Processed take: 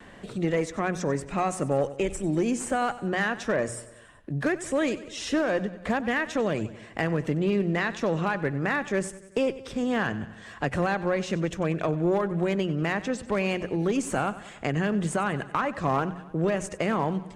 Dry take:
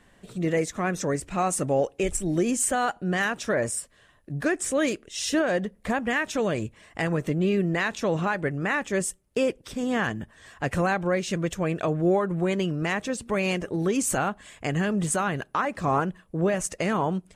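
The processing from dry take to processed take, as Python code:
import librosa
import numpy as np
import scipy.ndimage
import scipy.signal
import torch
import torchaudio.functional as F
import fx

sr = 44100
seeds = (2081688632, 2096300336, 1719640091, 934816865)

y = fx.diode_clip(x, sr, knee_db=-15.5)
y = scipy.signal.sosfilt(scipy.signal.butter(2, 11000.0, 'lowpass', fs=sr, output='sos'), y)
y = fx.high_shelf(y, sr, hz=5700.0, db=-9.5)
y = fx.hum_notches(y, sr, base_hz=60, count=3)
y = np.clip(y, -10.0 ** (-16.5 / 20.0), 10.0 ** (-16.5 / 20.0))
y = fx.vibrato(y, sr, rate_hz=0.67, depth_cents=22.0)
y = fx.echo_feedback(y, sr, ms=94, feedback_pct=51, wet_db=-17.0)
y = fx.band_squash(y, sr, depth_pct=40)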